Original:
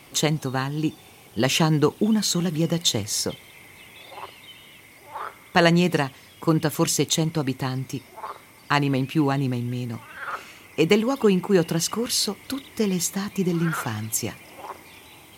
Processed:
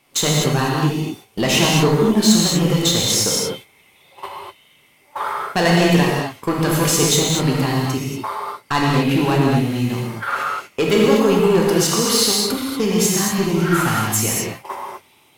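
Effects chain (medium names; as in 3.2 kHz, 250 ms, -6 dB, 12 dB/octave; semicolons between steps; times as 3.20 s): gate -35 dBFS, range -19 dB; tone controls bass -4 dB, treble 0 dB; in parallel at -3 dB: compression, threshold -28 dBFS, peak gain reduction 14.5 dB; on the sum: saturation -16 dBFS, distortion -12 dB; gated-style reverb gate 270 ms flat, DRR -3.5 dB; trim +3 dB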